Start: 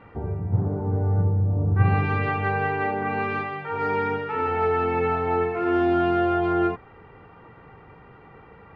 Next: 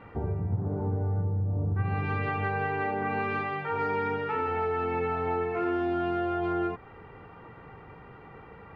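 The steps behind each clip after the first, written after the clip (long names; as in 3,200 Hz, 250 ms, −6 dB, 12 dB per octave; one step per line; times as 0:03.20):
downward compressor 5 to 1, threshold −26 dBFS, peak gain reduction 12 dB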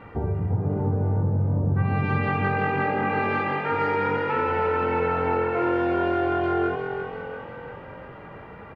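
echo with shifted repeats 346 ms, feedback 57%, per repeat +44 Hz, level −7.5 dB
level +4.5 dB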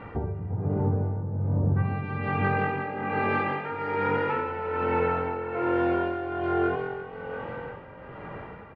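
in parallel at 0 dB: downward compressor, threshold −30 dBFS, peak gain reduction 11.5 dB
on the sum: amplitude tremolo 1.2 Hz, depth 61%
high-frequency loss of the air 91 metres
level −3 dB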